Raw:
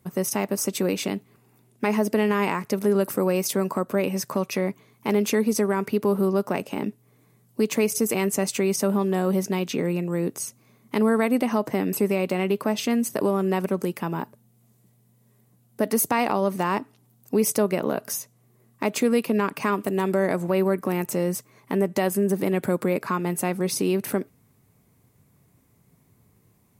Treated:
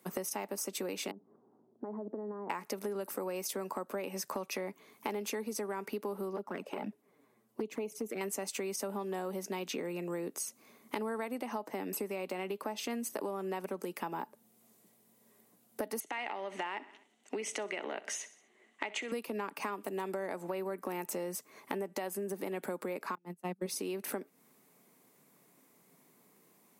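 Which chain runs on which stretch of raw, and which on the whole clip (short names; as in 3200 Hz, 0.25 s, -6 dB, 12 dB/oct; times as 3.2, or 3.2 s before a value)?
1.11–2.5 compressor, threshold -33 dBFS + Gaussian blur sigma 9.2 samples
6.36–8.21 high shelf 2800 Hz -11.5 dB + envelope flanger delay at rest 9.5 ms, full sweep at -19 dBFS
16–19.12 compressor 3:1, threshold -23 dBFS + speaker cabinet 320–7200 Hz, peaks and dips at 500 Hz -5 dB, 1100 Hz -5 dB, 2000 Hz +10 dB, 3000 Hz +9 dB, 5000 Hz -10 dB + feedback echo 63 ms, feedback 52%, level -19 dB
23.15–23.66 gate -23 dBFS, range -41 dB + bell 180 Hz +12.5 dB 1.4 oct
whole clip: Bessel high-pass 310 Hz, order 8; dynamic EQ 850 Hz, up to +7 dB, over -47 dBFS, Q 7.3; compressor 10:1, threshold -36 dBFS; gain +1.5 dB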